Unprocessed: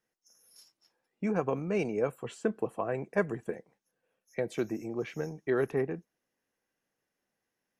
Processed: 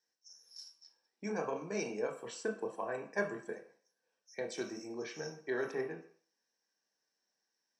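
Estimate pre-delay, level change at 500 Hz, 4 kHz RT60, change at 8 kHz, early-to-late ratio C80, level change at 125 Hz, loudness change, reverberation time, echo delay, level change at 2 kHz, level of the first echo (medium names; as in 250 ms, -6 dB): 23 ms, -6.5 dB, 0.50 s, +4.5 dB, 13.5 dB, -13.0 dB, -6.5 dB, 0.50 s, no echo, -2.0 dB, no echo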